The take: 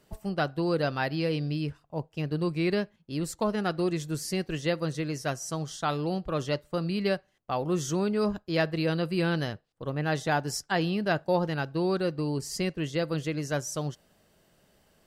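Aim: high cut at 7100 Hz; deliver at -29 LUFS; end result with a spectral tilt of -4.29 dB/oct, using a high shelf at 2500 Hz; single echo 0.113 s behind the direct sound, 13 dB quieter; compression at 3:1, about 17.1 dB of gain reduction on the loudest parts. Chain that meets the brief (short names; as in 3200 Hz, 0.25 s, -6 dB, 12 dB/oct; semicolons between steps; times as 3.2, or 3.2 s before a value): LPF 7100 Hz; high shelf 2500 Hz +8.5 dB; compressor 3:1, threshold -45 dBFS; echo 0.113 s -13 dB; gain +14.5 dB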